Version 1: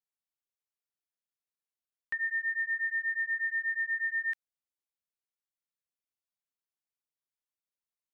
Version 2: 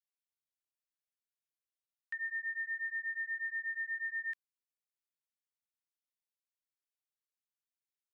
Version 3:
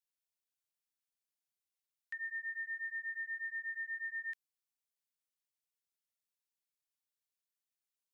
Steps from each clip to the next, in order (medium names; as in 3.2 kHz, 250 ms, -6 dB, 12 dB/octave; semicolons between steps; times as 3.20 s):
high-pass 1.3 kHz 24 dB/octave; trim -6 dB
treble shelf 2 kHz +9 dB; trim -7 dB